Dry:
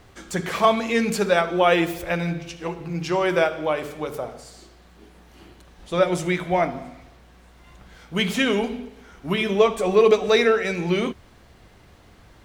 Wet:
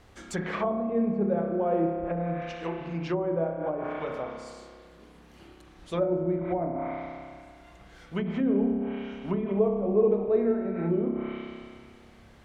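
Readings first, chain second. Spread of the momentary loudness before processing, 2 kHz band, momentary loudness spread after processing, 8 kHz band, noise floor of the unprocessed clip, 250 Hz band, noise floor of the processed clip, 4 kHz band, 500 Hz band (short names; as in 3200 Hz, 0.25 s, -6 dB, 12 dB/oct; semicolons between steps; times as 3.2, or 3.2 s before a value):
13 LU, -16.0 dB, 13 LU, under -15 dB, -52 dBFS, -2.0 dB, -53 dBFS, -20.0 dB, -6.0 dB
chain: spring tank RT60 2 s, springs 30 ms, chirp 35 ms, DRR 1.5 dB; treble ducked by the level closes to 510 Hz, closed at -17 dBFS; gain -5.5 dB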